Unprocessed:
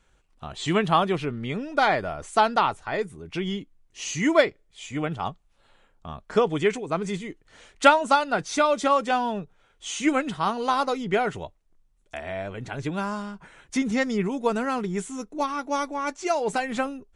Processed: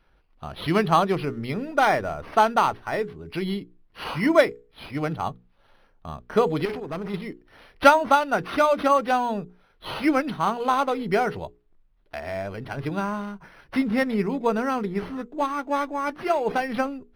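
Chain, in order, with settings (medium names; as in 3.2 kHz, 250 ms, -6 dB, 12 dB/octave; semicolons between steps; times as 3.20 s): hum notches 60/120/180/240/300/360/420/480 Hz; 6.65–7.14 s: valve stage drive 28 dB, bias 0.45; decimation joined by straight lines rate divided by 6×; trim +2 dB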